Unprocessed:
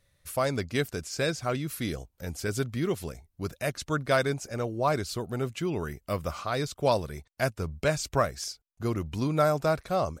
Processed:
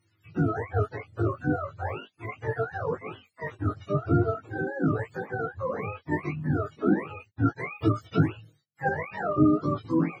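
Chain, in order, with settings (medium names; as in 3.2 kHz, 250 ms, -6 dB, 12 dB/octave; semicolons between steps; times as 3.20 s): spectrum inverted on a logarithmic axis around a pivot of 430 Hz; chorus 0.39 Hz, delay 18 ms, depth 2.2 ms; 8.38–8.89 s: comb 6.2 ms, depth 93%; trim +5.5 dB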